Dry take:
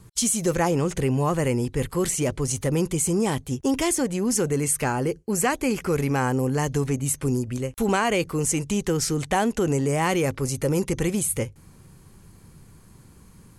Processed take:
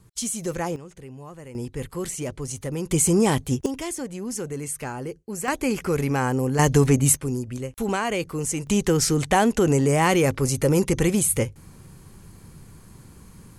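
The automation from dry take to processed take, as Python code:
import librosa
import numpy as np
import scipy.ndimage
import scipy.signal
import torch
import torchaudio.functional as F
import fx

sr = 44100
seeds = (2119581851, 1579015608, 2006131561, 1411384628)

y = fx.gain(x, sr, db=fx.steps((0.0, -5.5), (0.76, -18.0), (1.55, -6.0), (2.91, 4.0), (3.66, -7.5), (5.48, 0.0), (6.59, 7.0), (7.17, -3.0), (8.67, 3.5)))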